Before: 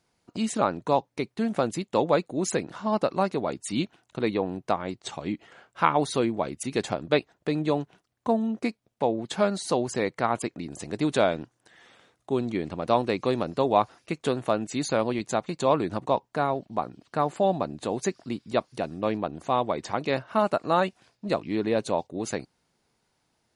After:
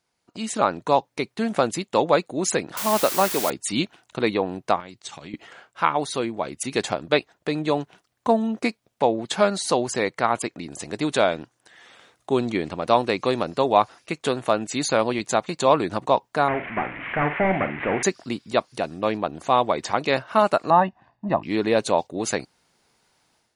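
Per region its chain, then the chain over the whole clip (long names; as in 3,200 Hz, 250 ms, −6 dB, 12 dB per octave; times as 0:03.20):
0:02.77–0:03.50: high-pass filter 180 Hz + bit-depth reduction 6 bits, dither triangular
0:04.80–0:05.34: parametric band 610 Hz −7.5 dB 2.8 octaves + downward compressor, threshold −38 dBFS + high-pass filter 81 Hz
0:16.48–0:18.03: linear delta modulator 16 kbit/s, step −38.5 dBFS + low-pass with resonance 2,100 Hz, resonance Q 3.8 + double-tracking delay 47 ms −11 dB
0:20.70–0:21.43: low-pass filter 1,200 Hz + comb filter 1.1 ms, depth 75%
whole clip: low-shelf EQ 470 Hz −7 dB; automatic gain control gain up to 11.5 dB; level −2 dB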